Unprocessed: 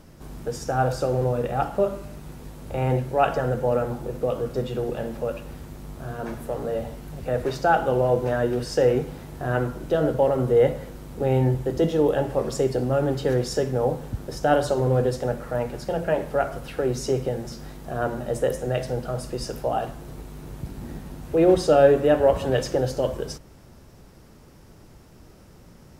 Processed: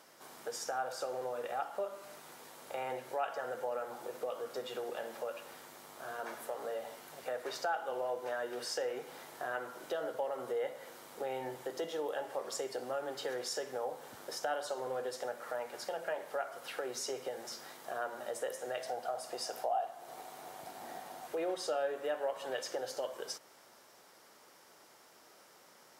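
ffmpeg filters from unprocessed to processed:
ffmpeg -i in.wav -filter_complex "[0:a]asettb=1/sr,asplit=3[link_01][link_02][link_03];[link_01]atrim=end=18.864[link_04];[link_02]atrim=start=18.86:end=21.27,asetpts=PTS-STARTPTS,afade=type=in:duration=0.004:curve=qsin,afade=type=out:start_time=2.406:duration=0.004:curve=qsin,equalizer=frequency=720:width_type=o:width=0.32:gain=14.5[link_05];[link_03]atrim=start=21.266[link_06];[link_04][link_05]acrossfade=duration=0.004:curve1=hsin:curve2=qsin[link_07];[link_07][link_06]acrossfade=duration=0.004:curve1=qsin:curve2=hsin,highpass=700,bandreject=frequency=2600:width=17,acompressor=threshold=-36dB:ratio=2.5,volume=-1.5dB" out.wav

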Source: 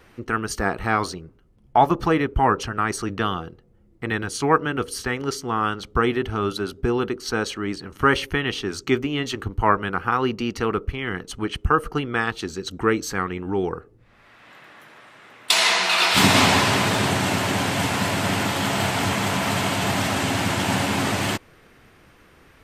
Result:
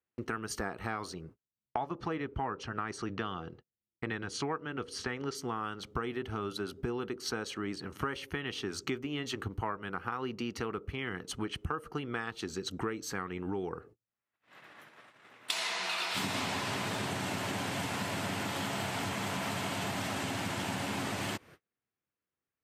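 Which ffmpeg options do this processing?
ffmpeg -i in.wav -filter_complex "[0:a]asettb=1/sr,asplit=3[link_01][link_02][link_03];[link_01]atrim=end=1.794[link_04];[link_02]atrim=start=1.79:end=5.35,asetpts=PTS-STARTPTS,afade=type=in:duration=0.004:curve=qsin,afade=type=out:start_time=3.556:duration=0.004:curve=qsin,lowpass=5900[link_05];[link_03]atrim=start=5.346[link_06];[link_04][link_05]acrossfade=duration=0.004:curve1=hsin:curve2=qsin[link_07];[link_07][link_06]acrossfade=duration=0.004:curve1=qsin:curve2=hsin,highpass=82,agate=range=-38dB:threshold=-46dB:ratio=16:detection=peak,acompressor=threshold=-29dB:ratio=6,volume=-3.5dB" out.wav

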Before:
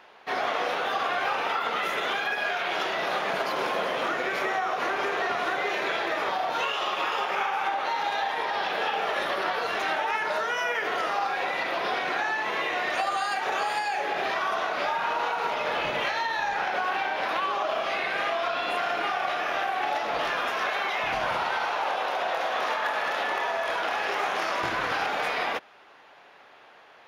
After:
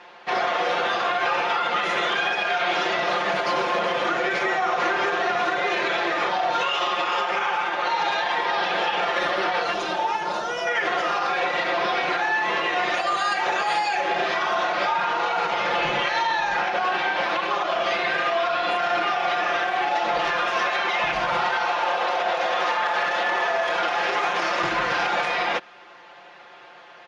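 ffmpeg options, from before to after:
ffmpeg -i in.wav -filter_complex "[0:a]asettb=1/sr,asplit=3[link_01][link_02][link_03];[link_01]atrim=end=9.734[link_04];[link_02]atrim=start=9.73:end=10.67,asetpts=PTS-STARTPTS,afade=type=in:duration=0.004:curve=qsin,afade=type=out:start_time=0.936:duration=0.004:curve=qsin,equalizer=frequency=1900:width_type=o:width=1.1:gain=-12.5[link_05];[link_03]atrim=start=10.666[link_06];[link_04][link_05]acrossfade=duration=0.004:curve1=hsin:curve2=qsin[link_07];[link_07][link_06]acrossfade=duration=0.004:curve1=qsin:curve2=hsin,lowpass=frequency=7600:width=0.5412,lowpass=frequency=7600:width=1.3066,aecho=1:1:5.7:0.99,alimiter=limit=-17.5dB:level=0:latency=1:release=73,volume=3.5dB" out.wav

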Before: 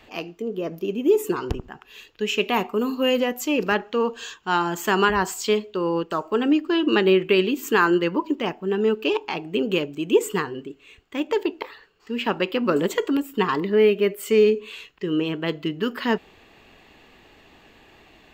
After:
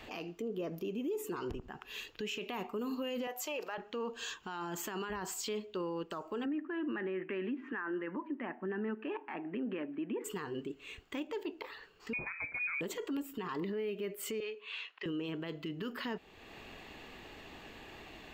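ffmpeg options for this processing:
ffmpeg -i in.wav -filter_complex "[0:a]asettb=1/sr,asplit=3[link_01][link_02][link_03];[link_01]atrim=end=3.274[link_04];[link_02]atrim=start=3.27:end=3.78,asetpts=PTS-STARTPTS,afade=type=in:duration=0.004:curve=qsin,afade=type=out:start_time=0.506:duration=0.004:curve=qsin,highpass=frequency=670:width_type=q:width=2[link_05];[link_03]atrim=start=3.776[link_06];[link_04][link_05]acrossfade=duration=0.004:curve1=hsin:curve2=qsin[link_07];[link_07][link_06]acrossfade=duration=0.004:curve1=qsin:curve2=hsin,asplit=3[link_08][link_09][link_10];[link_08]afade=type=out:start_time=6.44:duration=0.02[link_11];[link_09]highpass=frequency=210:width=0.5412,highpass=frequency=210:width=1.3066,equalizer=frequency=250:width_type=q:width=4:gain=7,equalizer=frequency=440:width_type=q:width=4:gain=-8,equalizer=frequency=1800:width_type=q:width=4:gain=10,lowpass=frequency=2100:width=0.5412,lowpass=frequency=2100:width=1.3066,afade=type=in:start_time=6.44:duration=0.02,afade=type=out:start_time=10.24:duration=0.02[link_12];[link_10]afade=type=in:start_time=10.24:duration=0.02[link_13];[link_11][link_12][link_13]amix=inputs=3:normalize=0,asettb=1/sr,asplit=3[link_14][link_15][link_16];[link_14]atrim=end=12.134[link_17];[link_15]atrim=start=12.13:end=12.81,asetpts=PTS-STARTPTS,afade=type=in:duration=0.004:curve=qsin,afade=type=out:start_time=0.676:duration=0.004:curve=qsin,lowpass=frequency=2300:width_type=q:width=0.5098,lowpass=frequency=2300:width_type=q:width=0.6013,lowpass=frequency=2300:width_type=q:width=0.9,lowpass=frequency=2300:width_type=q:width=2.563,afreqshift=-2700[link_18];[link_16]atrim=start=12.806[link_19];[link_17][link_18]acrossfade=duration=0.004:curve1=hsin:curve2=qsin[link_20];[link_20][link_19]acrossfade=duration=0.004:curve1=qsin:curve2=hsin,asettb=1/sr,asplit=3[link_21][link_22][link_23];[link_21]atrim=end=14.404[link_24];[link_22]atrim=start=14.4:end=15.06,asetpts=PTS-STARTPTS,afade=type=in:duration=0.004:curve=qsin,afade=type=out:start_time=0.656:duration=0.004:curve=qsin,asuperpass=centerf=1700:order=4:qfactor=0.55[link_25];[link_23]atrim=start=15.056[link_26];[link_24][link_25]acrossfade=duration=0.004:curve1=hsin:curve2=qsin[link_27];[link_27][link_26]acrossfade=duration=0.004:curve1=qsin:curve2=hsin,acompressor=threshold=-41dB:ratio=2,alimiter=level_in=7.5dB:limit=-24dB:level=0:latency=1:release=24,volume=-7.5dB,volume=1dB" out.wav

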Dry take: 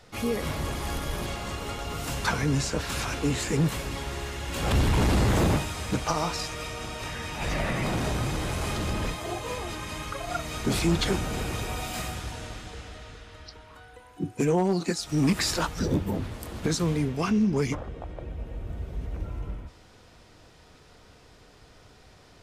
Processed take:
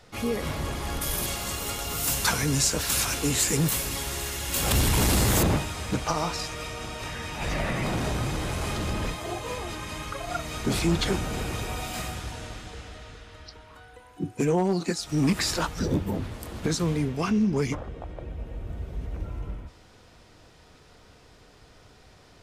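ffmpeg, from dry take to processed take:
ffmpeg -i in.wav -filter_complex "[0:a]asettb=1/sr,asplit=3[link_01][link_02][link_03];[link_01]atrim=end=1.014[link_04];[link_02]atrim=start=1.01:end=5.43,asetpts=PTS-STARTPTS,afade=type=in:duration=0.004:curve=qsin,afade=type=out:start_time=4.416:duration=0.004:curve=qsin,aemphasis=mode=production:type=75fm[link_05];[link_03]atrim=start=5.426[link_06];[link_04][link_05]acrossfade=duration=0.004:curve1=hsin:curve2=qsin[link_07];[link_07][link_06]acrossfade=duration=0.004:curve1=qsin:curve2=hsin" out.wav

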